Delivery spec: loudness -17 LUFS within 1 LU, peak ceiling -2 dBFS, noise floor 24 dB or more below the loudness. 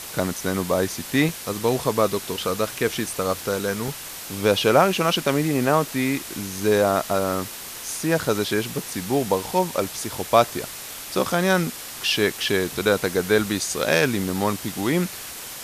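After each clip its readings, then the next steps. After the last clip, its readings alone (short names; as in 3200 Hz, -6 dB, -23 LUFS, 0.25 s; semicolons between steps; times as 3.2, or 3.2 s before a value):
dropouts 3; longest dropout 1.4 ms; noise floor -36 dBFS; noise floor target -47 dBFS; loudness -23.0 LUFS; peak -3.5 dBFS; loudness target -17.0 LUFS
-> interpolate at 0.37/1.29/3.88, 1.4 ms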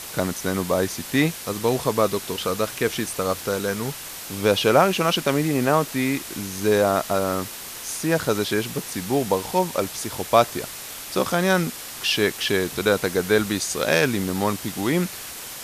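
dropouts 0; noise floor -36 dBFS; noise floor target -47 dBFS
-> denoiser 11 dB, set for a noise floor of -36 dBFS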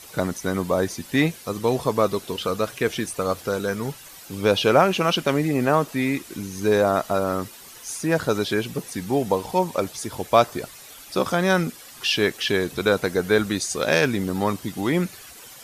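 noise floor -44 dBFS; noise floor target -47 dBFS
-> denoiser 6 dB, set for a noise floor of -44 dBFS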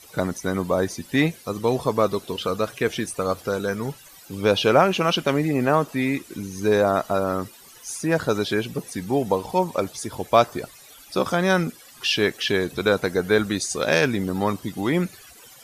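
noise floor -48 dBFS; loudness -23.0 LUFS; peak -3.5 dBFS; loudness target -17.0 LUFS
-> gain +6 dB; limiter -2 dBFS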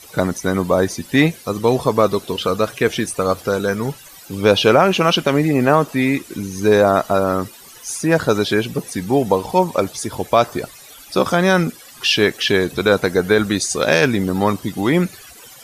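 loudness -17.5 LUFS; peak -2.0 dBFS; noise floor -42 dBFS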